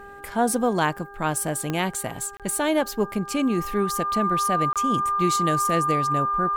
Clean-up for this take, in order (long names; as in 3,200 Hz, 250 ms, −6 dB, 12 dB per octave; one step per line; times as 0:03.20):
click removal
hum removal 401.3 Hz, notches 4
notch filter 1,200 Hz, Q 30
repair the gap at 0:02.37/0:04.73, 27 ms